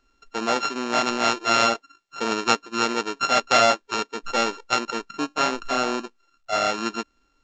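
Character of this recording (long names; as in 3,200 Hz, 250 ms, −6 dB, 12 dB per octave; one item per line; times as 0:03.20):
a buzz of ramps at a fixed pitch in blocks of 32 samples
mu-law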